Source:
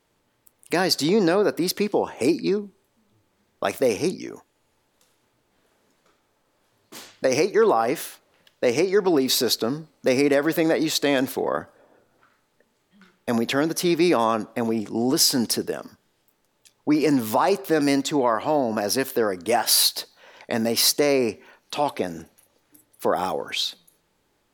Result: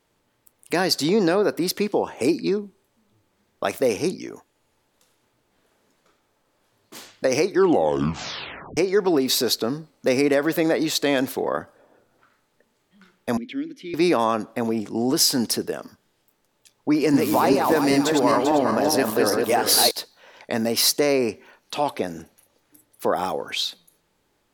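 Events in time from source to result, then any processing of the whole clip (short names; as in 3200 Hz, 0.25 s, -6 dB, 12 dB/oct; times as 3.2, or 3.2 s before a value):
7.43 tape stop 1.34 s
13.37–13.94 vowel filter i
16.94–19.91 regenerating reverse delay 0.197 s, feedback 57%, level -2.5 dB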